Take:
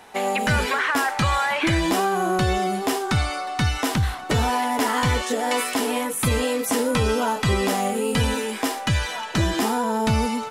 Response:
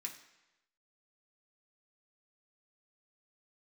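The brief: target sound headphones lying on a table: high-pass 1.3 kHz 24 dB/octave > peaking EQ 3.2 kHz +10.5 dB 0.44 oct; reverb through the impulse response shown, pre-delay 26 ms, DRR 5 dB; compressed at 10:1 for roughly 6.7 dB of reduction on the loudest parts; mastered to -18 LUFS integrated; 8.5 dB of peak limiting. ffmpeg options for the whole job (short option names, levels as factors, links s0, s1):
-filter_complex "[0:a]acompressor=threshold=0.0708:ratio=10,alimiter=limit=0.1:level=0:latency=1,asplit=2[s0][s1];[1:a]atrim=start_sample=2205,adelay=26[s2];[s1][s2]afir=irnorm=-1:irlink=0,volume=0.75[s3];[s0][s3]amix=inputs=2:normalize=0,highpass=f=1300:w=0.5412,highpass=f=1300:w=1.3066,equalizer=f=3200:t=o:w=0.44:g=10.5,volume=3.76"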